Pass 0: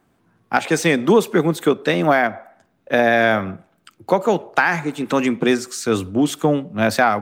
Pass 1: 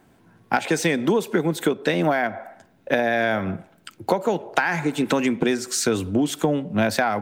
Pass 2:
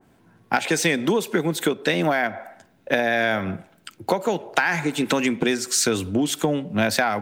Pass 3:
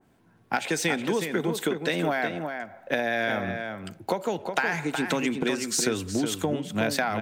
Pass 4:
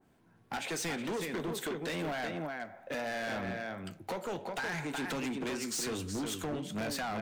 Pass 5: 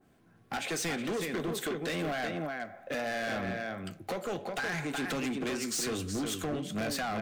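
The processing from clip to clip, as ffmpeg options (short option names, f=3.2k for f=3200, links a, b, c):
-af "bandreject=f=1.2k:w=7.6,acompressor=threshold=-24dB:ratio=6,volume=6dB"
-af "adynamicequalizer=threshold=0.0158:dfrequency=1600:dqfactor=0.7:tfrequency=1600:tqfactor=0.7:attack=5:release=100:ratio=0.375:range=2.5:mode=boostabove:tftype=highshelf,volume=-1dB"
-filter_complex "[0:a]asplit=2[a][b];[b]adelay=367.3,volume=-6dB,highshelf=f=4k:g=-8.27[c];[a][c]amix=inputs=2:normalize=0,volume=-5.5dB"
-af "asoftclip=type=tanh:threshold=-24dB,flanger=delay=9.9:depth=7.1:regen=-70:speed=1.3:shape=triangular,asoftclip=type=hard:threshold=-32.5dB"
-af "asuperstop=centerf=920:order=4:qfactor=7.4,volume=2.5dB"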